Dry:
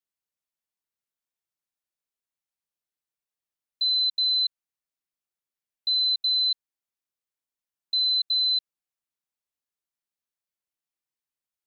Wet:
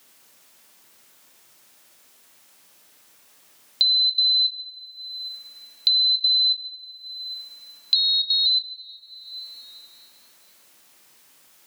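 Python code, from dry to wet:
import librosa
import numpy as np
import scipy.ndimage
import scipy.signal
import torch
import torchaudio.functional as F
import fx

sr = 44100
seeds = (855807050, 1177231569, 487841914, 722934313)

y = fx.ring_mod(x, sr, carrier_hz=250.0, at=(7.95, 8.46))
y = fx.rev_double_slope(y, sr, seeds[0], early_s=0.56, late_s=2.3, knee_db=-25, drr_db=9.5)
y = fx.band_squash(y, sr, depth_pct=100)
y = y * librosa.db_to_amplitude(6.0)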